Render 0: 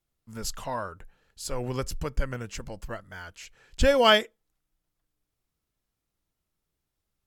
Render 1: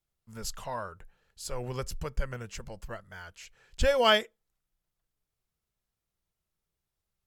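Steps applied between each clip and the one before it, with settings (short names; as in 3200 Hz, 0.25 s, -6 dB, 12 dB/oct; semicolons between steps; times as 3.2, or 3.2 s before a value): bell 280 Hz -12.5 dB 0.24 oct; gain -3.5 dB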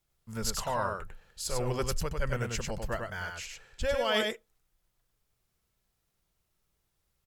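reverse; compressor 10:1, threshold -33 dBFS, peak gain reduction 16 dB; reverse; echo 98 ms -4 dB; gain +6.5 dB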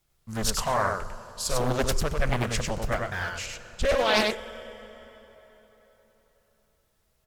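plate-style reverb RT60 4.1 s, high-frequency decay 0.7×, DRR 14 dB; Doppler distortion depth 0.99 ms; gain +6 dB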